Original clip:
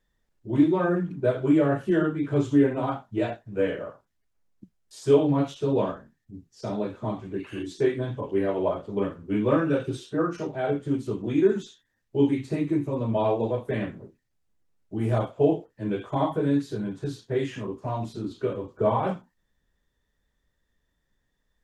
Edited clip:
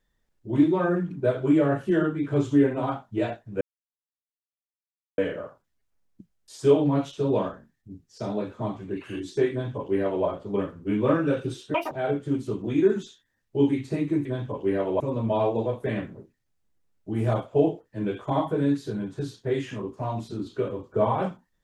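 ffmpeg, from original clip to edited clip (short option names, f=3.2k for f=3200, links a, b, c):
-filter_complex "[0:a]asplit=6[a][b][c][d][e][f];[a]atrim=end=3.61,asetpts=PTS-STARTPTS,afade=t=out:st=3.606:d=0.004:c=hsin,apad=pad_dur=1.57[g];[b]atrim=start=3.61:end=10.174,asetpts=PTS-STARTPTS,afade=t=in:d=0.004:c=hsin[h];[c]atrim=start=10.17:end=10.51,asetpts=PTS-STARTPTS,asetrate=86877,aresample=44100,atrim=end_sample=7611,asetpts=PTS-STARTPTS[i];[d]atrim=start=10.506:end=12.852[j];[e]atrim=start=7.938:end=8.692[k];[f]atrim=start=12.848[l];[g][h]concat=n=2:v=0:a=1[m];[m][i]acrossfade=d=0.004:c1=hsin:c2=hsin[n];[n][j]acrossfade=d=0.004:c1=hsin:c2=hsin[o];[o][k]acrossfade=d=0.004:c1=hsin:c2=hsin[p];[p][l]acrossfade=d=0.004:c1=hsin:c2=hsin"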